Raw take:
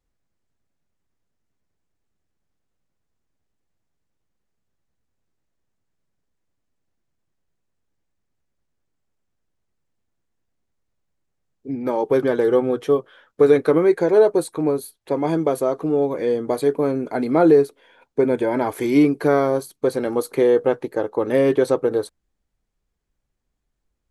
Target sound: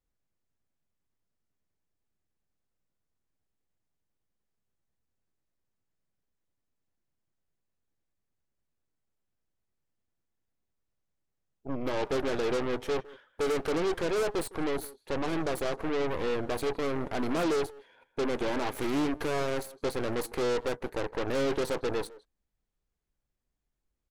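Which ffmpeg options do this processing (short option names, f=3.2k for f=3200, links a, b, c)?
-filter_complex "[0:a]asoftclip=type=tanh:threshold=-18dB,asplit=2[a][b];[b]adelay=160,highpass=300,lowpass=3.4k,asoftclip=type=hard:threshold=-26.5dB,volume=-13dB[c];[a][c]amix=inputs=2:normalize=0,aeval=exprs='0.141*(cos(1*acos(clip(val(0)/0.141,-1,1)))-cos(1*PI/2))+0.0398*(cos(6*acos(clip(val(0)/0.141,-1,1)))-cos(6*PI/2))':c=same,volume=-7.5dB"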